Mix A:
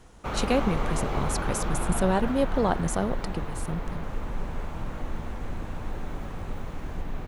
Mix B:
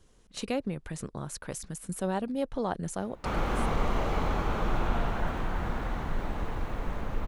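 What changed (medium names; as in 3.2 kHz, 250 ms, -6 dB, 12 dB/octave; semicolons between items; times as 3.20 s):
speech -6.5 dB; background: entry +3.00 s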